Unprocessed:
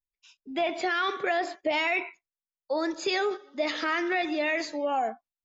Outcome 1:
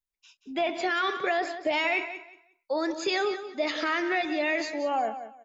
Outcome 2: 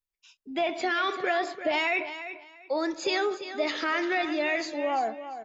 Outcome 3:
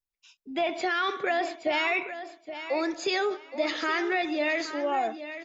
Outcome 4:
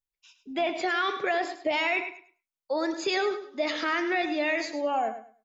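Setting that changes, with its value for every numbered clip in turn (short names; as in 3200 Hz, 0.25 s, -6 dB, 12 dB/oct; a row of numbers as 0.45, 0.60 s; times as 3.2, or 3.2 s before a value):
feedback echo, time: 0.18, 0.343, 0.821, 0.104 s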